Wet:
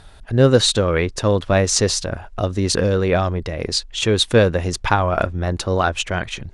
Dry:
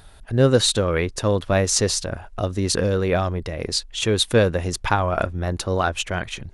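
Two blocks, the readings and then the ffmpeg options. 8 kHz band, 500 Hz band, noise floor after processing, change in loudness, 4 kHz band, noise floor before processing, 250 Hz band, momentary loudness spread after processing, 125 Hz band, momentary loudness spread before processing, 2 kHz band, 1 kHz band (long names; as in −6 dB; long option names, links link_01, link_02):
+1.0 dB, +3.0 dB, −42 dBFS, +3.0 dB, +3.0 dB, −45 dBFS, +3.0 dB, 9 LU, +3.0 dB, 9 LU, +3.0 dB, +3.0 dB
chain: -af "lowpass=8300,volume=3dB"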